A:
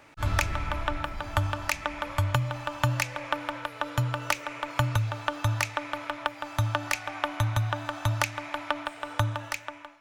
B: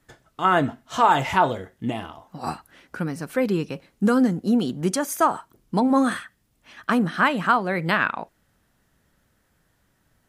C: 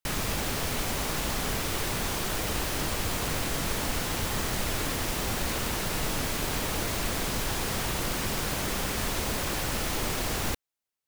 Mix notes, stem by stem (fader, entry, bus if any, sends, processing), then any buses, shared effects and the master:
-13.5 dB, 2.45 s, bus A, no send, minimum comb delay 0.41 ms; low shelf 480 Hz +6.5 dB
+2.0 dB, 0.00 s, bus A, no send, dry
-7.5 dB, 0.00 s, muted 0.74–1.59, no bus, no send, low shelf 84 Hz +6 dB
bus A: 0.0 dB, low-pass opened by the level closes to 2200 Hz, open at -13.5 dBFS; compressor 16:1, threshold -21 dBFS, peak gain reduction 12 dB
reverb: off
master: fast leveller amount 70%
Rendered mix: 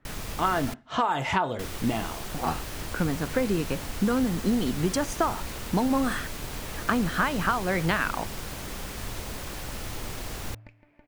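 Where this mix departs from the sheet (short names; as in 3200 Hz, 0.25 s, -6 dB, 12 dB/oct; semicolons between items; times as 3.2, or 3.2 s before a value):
stem A -13.5 dB -> -25.0 dB; master: missing fast leveller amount 70%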